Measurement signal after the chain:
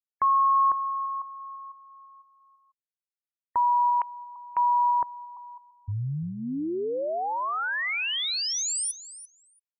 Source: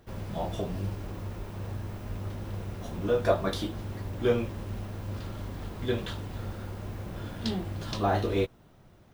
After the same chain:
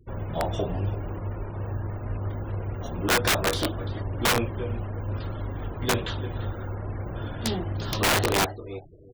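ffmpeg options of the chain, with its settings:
-filter_complex "[0:a]asplit=2[s0][s1];[s1]aecho=0:1:342|684:0.178|0.032[s2];[s0][s2]amix=inputs=2:normalize=0,afftfilt=real='re*gte(hypot(re,im),0.00447)':imag='im*gte(hypot(re,im),0.00447)':win_size=1024:overlap=0.75,equalizer=f=200:t=o:w=0.35:g=-8,aeval=exprs='(mod(11.9*val(0)+1,2)-1)/11.9':c=same,volume=1.88"

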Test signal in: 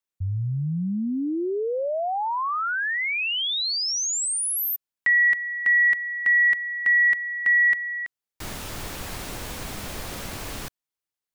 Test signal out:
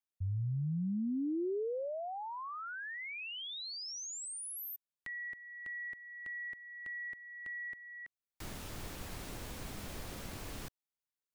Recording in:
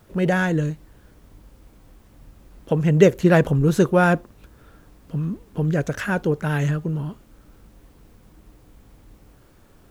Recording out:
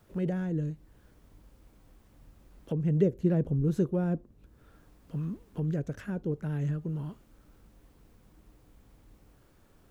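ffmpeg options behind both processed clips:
-filter_complex "[0:a]acrossover=split=460[s0][s1];[s1]acompressor=threshold=0.0224:ratio=8:attack=0.98:release=889:knee=2.83:detection=peak[s2];[s0][s2]amix=inputs=2:normalize=0,volume=0.376"

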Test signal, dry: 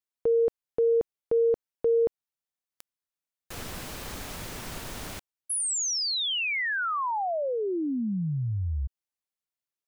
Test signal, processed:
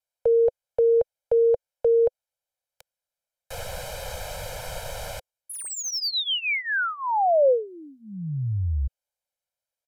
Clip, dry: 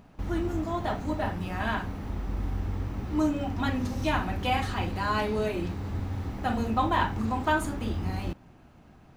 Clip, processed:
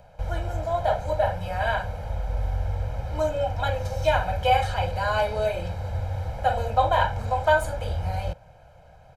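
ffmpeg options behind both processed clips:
-filter_complex "[0:a]aecho=1:1:1.3:0.8,aresample=32000,aresample=44100,acrossover=split=180|810|5400[s0][s1][s2][s3];[s1]highpass=f=510:t=q:w=4.9[s4];[s3]volume=59.6,asoftclip=hard,volume=0.0168[s5];[s0][s4][s2][s5]amix=inputs=4:normalize=0"

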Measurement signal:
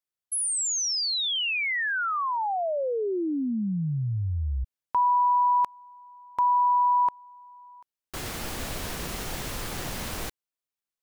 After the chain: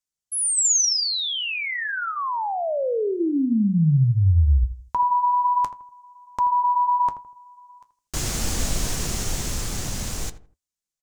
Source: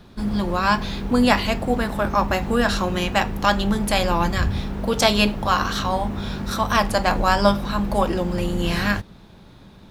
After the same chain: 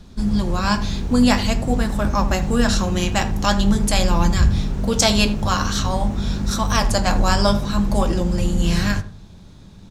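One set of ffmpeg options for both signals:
-filter_complex "[0:a]dynaudnorm=f=190:g=21:m=1.88,equalizer=f=6800:t=o:w=1.2:g=13,flanger=delay=3.5:depth=9.1:regen=-64:speed=0.47:shape=triangular,lowshelf=f=220:g=12,asplit=2[s0][s1];[s1]adelay=81,lowpass=f=1300:p=1,volume=0.251,asplit=2[s2][s3];[s3]adelay=81,lowpass=f=1300:p=1,volume=0.34,asplit=2[s4][s5];[s5]adelay=81,lowpass=f=1300:p=1,volume=0.34[s6];[s0][s2][s4][s6]amix=inputs=4:normalize=0"

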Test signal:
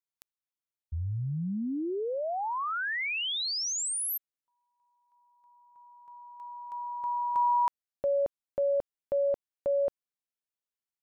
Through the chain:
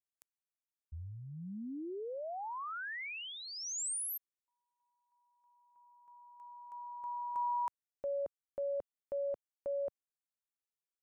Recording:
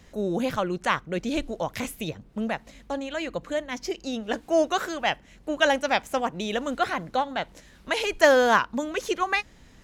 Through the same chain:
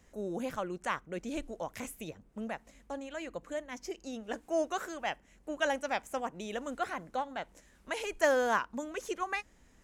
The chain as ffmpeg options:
-af "equalizer=f=125:t=o:w=1:g=-6,equalizer=f=4000:t=o:w=1:g=-7,equalizer=f=8000:t=o:w=1:g=5,volume=0.355"

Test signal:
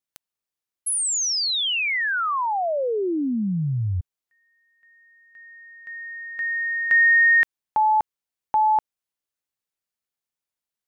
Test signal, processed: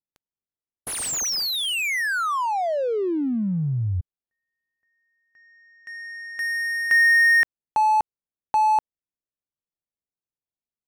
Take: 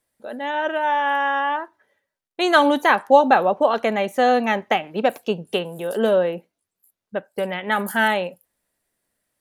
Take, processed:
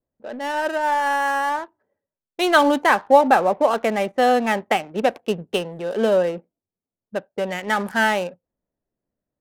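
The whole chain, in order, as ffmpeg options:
-af "adynamicsmooth=sensitivity=7.5:basefreq=640,adynamicequalizer=threshold=0.0126:dfrequency=3800:dqfactor=1.3:tfrequency=3800:tqfactor=1.3:attack=5:release=100:ratio=0.375:range=2:mode=cutabove:tftype=bell"

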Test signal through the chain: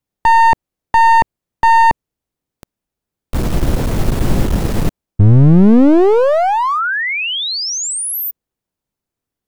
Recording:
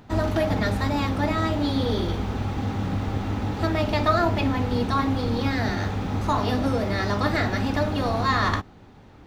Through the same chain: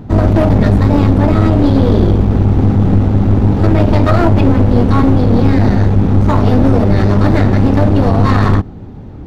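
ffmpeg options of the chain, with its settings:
-af "tiltshelf=f=660:g=9.5,apsyclip=4.22,aeval=exprs='clip(val(0),-1,0.237)':c=same,volume=0.891"

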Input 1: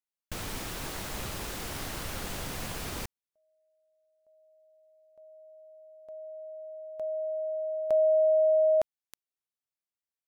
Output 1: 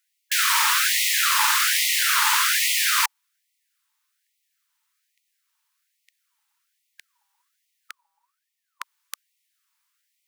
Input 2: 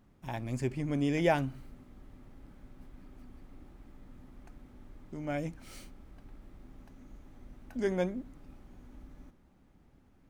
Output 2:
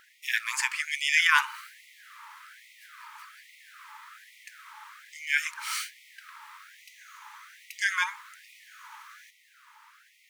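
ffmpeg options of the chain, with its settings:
-af "equalizer=f=660:t=o:w=2.8:g=6,alimiter=level_in=8.91:limit=0.891:release=50:level=0:latency=1,afftfilt=real='re*gte(b*sr/1024,820*pow(1900/820,0.5+0.5*sin(2*PI*1.2*pts/sr)))':imag='im*gte(b*sr/1024,820*pow(1900/820,0.5+0.5*sin(2*PI*1.2*pts/sr)))':win_size=1024:overlap=0.75"

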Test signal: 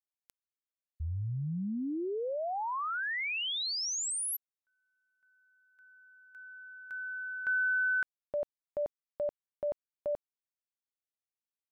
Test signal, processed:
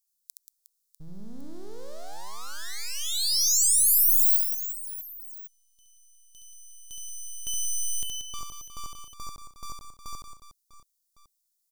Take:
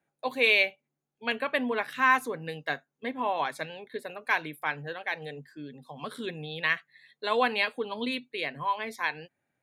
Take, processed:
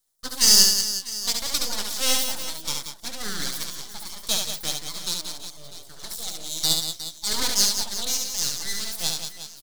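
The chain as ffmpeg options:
-af "aeval=exprs='abs(val(0))':c=same,aecho=1:1:70|182|361.2|647.9|1107:0.631|0.398|0.251|0.158|0.1,aexciter=amount=9.7:drive=6:freq=3800,volume=0.596"

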